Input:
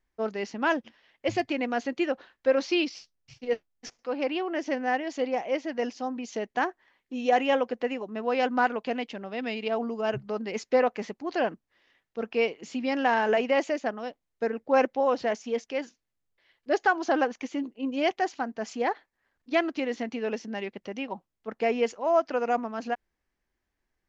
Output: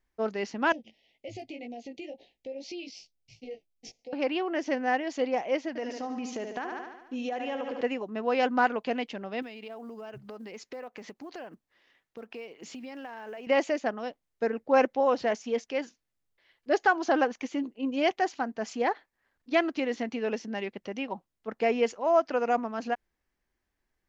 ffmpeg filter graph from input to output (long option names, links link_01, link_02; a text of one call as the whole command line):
ffmpeg -i in.wav -filter_complex "[0:a]asettb=1/sr,asplit=3[link_01][link_02][link_03];[link_01]atrim=end=0.724[link_04];[link_02]atrim=start=0.72:end=4.13,asetpts=PTS-STARTPTS,afade=type=in:duration=0.004:curve=qsin,afade=type=out:start_time=3.406:duration=0.004:curve=qsin,flanger=delay=16.5:depth=2.8:speed=2,acompressor=threshold=-38dB:ratio=4:attack=3.2:release=140:knee=1:detection=peak,asuperstop=centerf=1300:order=8:qfactor=0.98[link_05];[link_03]atrim=start=4.126[link_06];[link_04][link_05]acrossfade=duration=0.004:curve1=hsin:curve2=qsin[link_07];[link_07][link_06]acrossfade=duration=0.004:curve1=qsin:curve2=hsin,asettb=1/sr,asplit=3[link_08][link_09][link_10];[link_08]atrim=end=5.684[link_11];[link_09]atrim=start=5.68:end=7.81,asetpts=PTS-STARTPTS,afade=type=in:duration=0.004:curve=qsin,afade=type=out:start_time=2.126:duration=0.004:curve=qsin,aecho=1:1:73|146|219|292|365|438|511:0.355|0.209|0.124|0.0729|0.043|0.0254|0.015,atrim=end_sample=93933,acompressor=threshold=-30dB:ratio=6:attack=3.2:release=140:knee=1:detection=peak[link_12];[link_10]atrim=start=7.806[link_13];[link_11][link_12]acrossfade=duration=0.004:curve1=hsin:curve2=qsin[link_14];[link_14][link_13]acrossfade=duration=0.004:curve1=qsin:curve2=hsin,asettb=1/sr,asplit=3[link_15][link_16][link_17];[link_15]atrim=end=9.424[link_18];[link_16]atrim=start=9.42:end=13.47,asetpts=PTS-STARTPTS,afade=type=in:duration=0.004:curve=qsin,afade=type=out:start_time=4.046:duration=0.004:curve=qsin,lowshelf=frequency=110:gain=-5,acompressor=threshold=-39dB:ratio=6:attack=3.2:release=140:knee=1:detection=peak,acrusher=bits=9:mode=log:mix=0:aa=0.000001[link_19];[link_17]atrim=start=13.466[link_20];[link_18][link_19]acrossfade=duration=0.004:curve1=hsin:curve2=qsin[link_21];[link_21][link_20]acrossfade=duration=0.004:curve1=qsin:curve2=hsin" out.wav